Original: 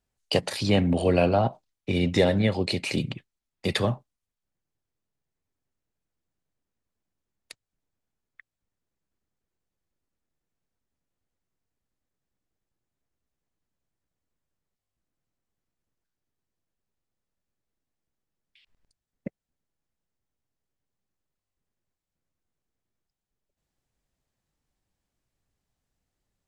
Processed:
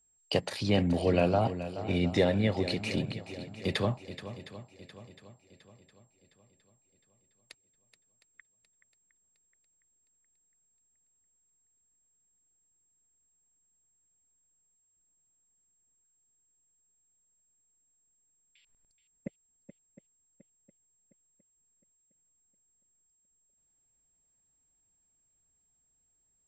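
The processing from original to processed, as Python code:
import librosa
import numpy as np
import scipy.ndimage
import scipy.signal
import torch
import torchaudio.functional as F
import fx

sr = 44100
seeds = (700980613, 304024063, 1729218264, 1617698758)

y = x + 10.0 ** (-60.0 / 20.0) * np.sin(2.0 * np.pi * 7500.0 * np.arange(len(x)) / sr)
y = fx.high_shelf(y, sr, hz=7600.0, db=-8.0)
y = fx.echo_swing(y, sr, ms=711, ratio=1.5, feedback_pct=40, wet_db=-13)
y = y * librosa.db_to_amplitude(-4.5)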